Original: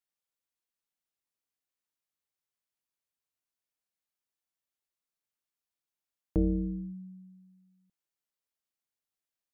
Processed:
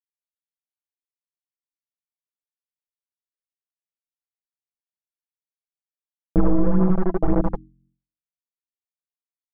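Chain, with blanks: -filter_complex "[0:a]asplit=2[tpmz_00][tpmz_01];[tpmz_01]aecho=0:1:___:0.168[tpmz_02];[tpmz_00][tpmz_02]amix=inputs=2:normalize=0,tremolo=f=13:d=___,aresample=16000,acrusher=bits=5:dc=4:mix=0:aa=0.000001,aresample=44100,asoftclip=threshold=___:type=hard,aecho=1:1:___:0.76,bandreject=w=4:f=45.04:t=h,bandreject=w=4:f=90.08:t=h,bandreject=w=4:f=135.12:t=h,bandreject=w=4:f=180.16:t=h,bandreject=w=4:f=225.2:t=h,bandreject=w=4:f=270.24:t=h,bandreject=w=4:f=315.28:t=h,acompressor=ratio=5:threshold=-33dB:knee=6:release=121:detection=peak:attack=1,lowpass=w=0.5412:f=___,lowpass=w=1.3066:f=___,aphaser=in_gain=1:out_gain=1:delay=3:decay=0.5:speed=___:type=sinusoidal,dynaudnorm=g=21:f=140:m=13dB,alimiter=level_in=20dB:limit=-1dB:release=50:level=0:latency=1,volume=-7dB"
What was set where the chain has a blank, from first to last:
868, 0.74, -29dB, 6, 1200, 1200, 1.9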